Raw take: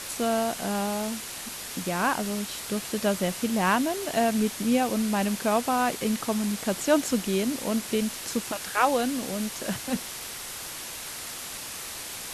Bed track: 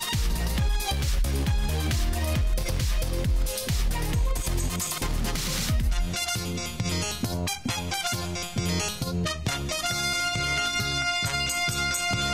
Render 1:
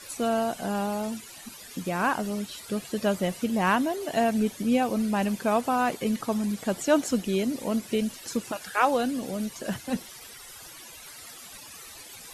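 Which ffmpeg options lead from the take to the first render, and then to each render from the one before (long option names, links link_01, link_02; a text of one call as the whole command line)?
ffmpeg -i in.wav -af "afftdn=noise_reduction=14:noise_floor=-38" out.wav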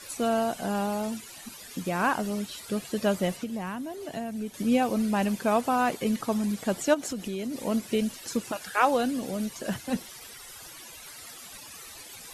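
ffmpeg -i in.wav -filter_complex "[0:a]asettb=1/sr,asplit=3[link_01][link_02][link_03];[link_01]atrim=end=3.364[link_04];[link_02]atrim=start=3.36:end=4.54,asetpts=PTS-STARTPTS,afade=type=in:duration=0.004:curve=qsin,afade=type=out:start_time=1.176:duration=0.004:curve=qsin,acrossover=split=250|7000[link_05][link_06][link_07];[link_05]acompressor=threshold=-37dB:ratio=4[link_08];[link_06]acompressor=threshold=-37dB:ratio=4[link_09];[link_07]acompressor=threshold=-56dB:ratio=4[link_10];[link_08][link_09][link_10]amix=inputs=3:normalize=0[link_11];[link_03]atrim=start=4.536[link_12];[link_04][link_11]acrossfade=duration=0.004:curve1=hsin:curve2=qsin[link_13];[link_13][link_12]acrossfade=duration=0.004:curve1=qsin:curve2=hsin,asplit=3[link_14][link_15][link_16];[link_14]afade=type=out:start_time=6.93:duration=0.02[link_17];[link_15]acompressor=threshold=-29dB:ratio=6:attack=3.2:release=140:knee=1:detection=peak,afade=type=in:start_time=6.93:duration=0.02,afade=type=out:start_time=7.6:duration=0.02[link_18];[link_16]afade=type=in:start_time=7.6:duration=0.02[link_19];[link_17][link_18][link_19]amix=inputs=3:normalize=0" out.wav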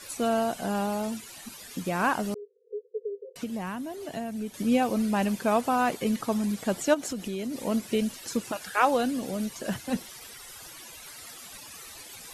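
ffmpeg -i in.wav -filter_complex "[0:a]asettb=1/sr,asplit=3[link_01][link_02][link_03];[link_01]atrim=end=2.344[link_04];[link_02]atrim=start=2.34:end=3.36,asetpts=PTS-STARTPTS,afade=type=in:duration=0.004:curve=qsin,afade=type=out:start_time=1.016:duration=0.004:curve=qsin,asuperpass=centerf=450:order=12:qfactor=4[link_05];[link_03]atrim=start=3.356[link_06];[link_04][link_05]acrossfade=duration=0.004:curve1=hsin:curve2=qsin[link_07];[link_07][link_06]acrossfade=duration=0.004:curve1=qsin:curve2=hsin" out.wav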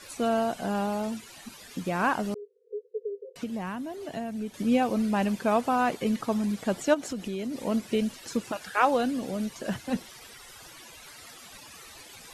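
ffmpeg -i in.wav -af "highshelf=frequency=7600:gain=-9" out.wav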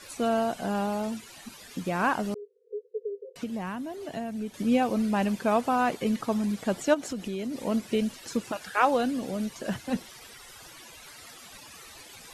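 ffmpeg -i in.wav -af anull out.wav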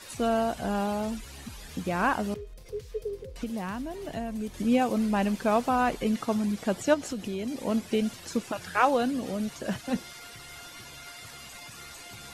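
ffmpeg -i in.wav -i bed.wav -filter_complex "[1:a]volume=-21.5dB[link_01];[0:a][link_01]amix=inputs=2:normalize=0" out.wav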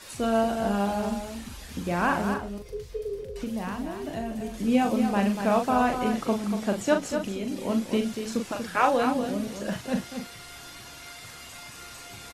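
ffmpeg -i in.wav -filter_complex "[0:a]asplit=2[link_01][link_02];[link_02]adelay=40,volume=-6dB[link_03];[link_01][link_03]amix=inputs=2:normalize=0,asplit=2[link_04][link_05];[link_05]adelay=239.1,volume=-7dB,highshelf=frequency=4000:gain=-5.38[link_06];[link_04][link_06]amix=inputs=2:normalize=0" out.wav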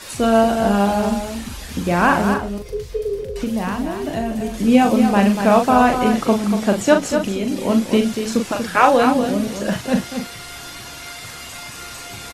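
ffmpeg -i in.wav -af "volume=9.5dB,alimiter=limit=-1dB:level=0:latency=1" out.wav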